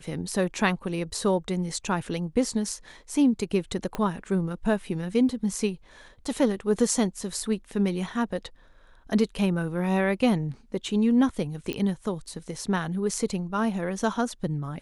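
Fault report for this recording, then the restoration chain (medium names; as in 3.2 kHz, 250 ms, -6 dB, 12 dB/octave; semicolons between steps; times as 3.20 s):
3.95 s: pop -16 dBFS
11.73 s: pop -16 dBFS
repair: de-click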